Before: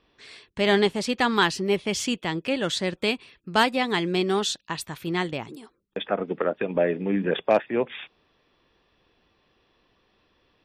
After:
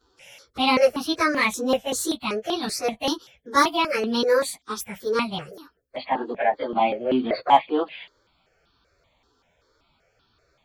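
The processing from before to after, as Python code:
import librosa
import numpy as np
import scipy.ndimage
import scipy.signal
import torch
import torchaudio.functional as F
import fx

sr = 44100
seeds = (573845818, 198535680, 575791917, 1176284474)

y = fx.pitch_bins(x, sr, semitones=4.5)
y = fx.phaser_held(y, sr, hz=5.2, low_hz=600.0, high_hz=2100.0)
y = y * librosa.db_to_amplitude(7.5)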